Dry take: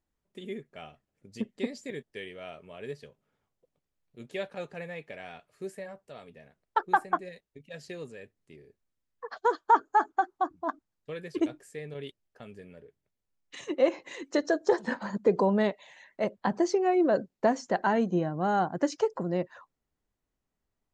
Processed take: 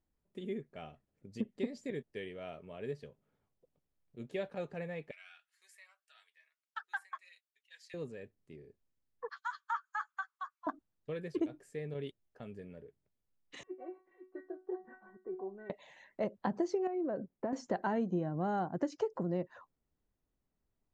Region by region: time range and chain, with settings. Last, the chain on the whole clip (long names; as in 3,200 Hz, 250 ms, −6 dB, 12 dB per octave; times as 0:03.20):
0:05.11–0:07.94: high-pass filter 1,400 Hz 24 dB per octave + comb filter 6.3 ms, depth 34% + phaser whose notches keep moving one way rising 1.4 Hz
0:09.29–0:10.67: Butterworth high-pass 1,100 Hz 48 dB per octave + double-tracking delay 13 ms −12 dB
0:13.63–0:15.70: low-pass filter 1,800 Hz 24 dB per octave + stiff-string resonator 370 Hz, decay 0.27 s, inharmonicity 0.002
0:16.87–0:17.53: low-pass filter 2,000 Hz + downward compressor 2.5 to 1, threshold −34 dBFS
whole clip: tilt shelving filter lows +3.5 dB, about 710 Hz; downward compressor 2.5 to 1, threshold −30 dBFS; high-shelf EQ 5,500 Hz −4.5 dB; level −2.5 dB